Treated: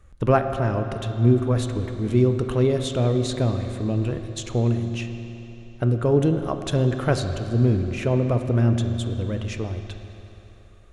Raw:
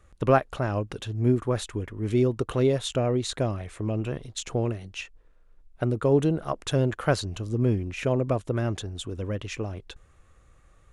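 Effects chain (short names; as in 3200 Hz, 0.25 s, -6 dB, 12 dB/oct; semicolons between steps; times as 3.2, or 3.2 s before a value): low shelf 210 Hz +6.5 dB; on a send: reverb RT60 3.5 s, pre-delay 4 ms, DRR 6 dB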